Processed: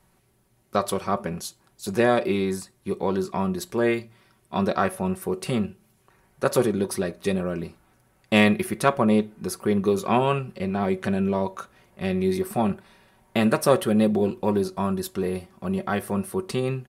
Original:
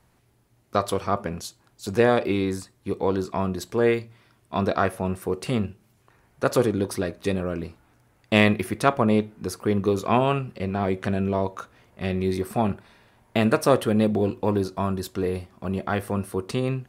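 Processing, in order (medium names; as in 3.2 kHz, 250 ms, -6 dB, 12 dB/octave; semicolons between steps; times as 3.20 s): peaking EQ 11 kHz +6 dB 0.6 oct; comb 5.3 ms, depth 46%; trim -1 dB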